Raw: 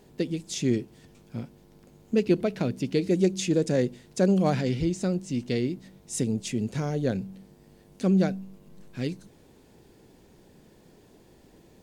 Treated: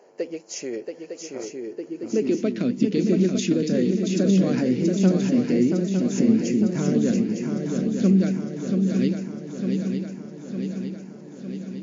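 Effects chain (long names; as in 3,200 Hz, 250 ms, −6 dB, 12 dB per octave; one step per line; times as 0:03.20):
brickwall limiter −19 dBFS, peak gain reduction 8.5 dB
auto-filter notch square 0.22 Hz 860–3,600 Hz
on a send: feedback echo with a long and a short gap by turns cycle 906 ms, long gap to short 3 to 1, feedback 63%, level −5.5 dB
on the sum: high-pass filter sweep 530 Hz → 220 Hz, 0:01.31–0:02.66
level +3 dB
MP3 40 kbit/s 16,000 Hz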